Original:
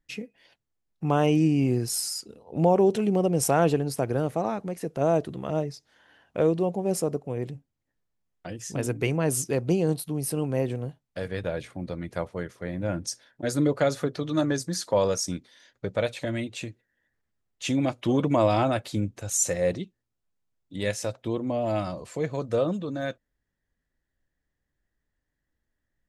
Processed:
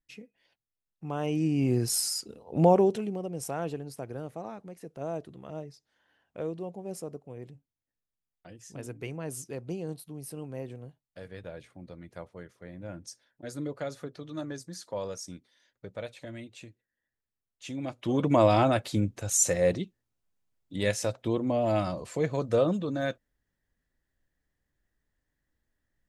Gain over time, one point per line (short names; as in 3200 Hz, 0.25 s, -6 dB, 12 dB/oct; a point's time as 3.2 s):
1.12 s -11 dB
1.84 s +0.5 dB
2.72 s +0.5 dB
3.19 s -12 dB
17.73 s -12 dB
18.36 s +0.5 dB